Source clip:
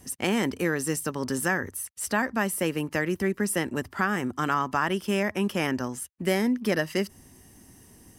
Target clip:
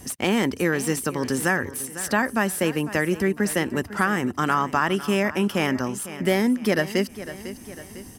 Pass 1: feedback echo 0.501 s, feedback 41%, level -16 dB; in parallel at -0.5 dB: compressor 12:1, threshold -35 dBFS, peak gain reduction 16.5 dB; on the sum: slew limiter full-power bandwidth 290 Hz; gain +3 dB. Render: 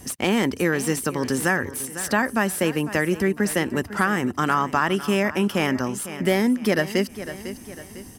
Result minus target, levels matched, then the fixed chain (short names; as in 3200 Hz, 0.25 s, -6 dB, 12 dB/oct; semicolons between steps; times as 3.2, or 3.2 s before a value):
compressor: peak gain reduction -6 dB
feedback echo 0.501 s, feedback 41%, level -16 dB; in parallel at -0.5 dB: compressor 12:1, threshold -41.5 dBFS, peak gain reduction 22.5 dB; on the sum: slew limiter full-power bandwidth 290 Hz; gain +3 dB